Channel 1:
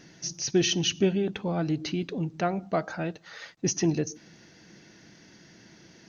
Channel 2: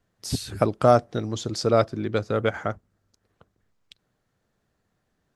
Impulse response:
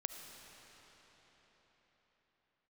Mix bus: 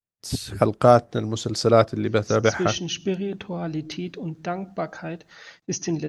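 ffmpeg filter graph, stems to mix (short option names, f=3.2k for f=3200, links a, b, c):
-filter_complex "[0:a]adelay=2050,volume=-9dB[a];[1:a]volume=-1.5dB[b];[a][b]amix=inputs=2:normalize=0,agate=range=-33dB:threshold=-59dB:ratio=3:detection=peak,dynaudnorm=f=280:g=3:m=8dB"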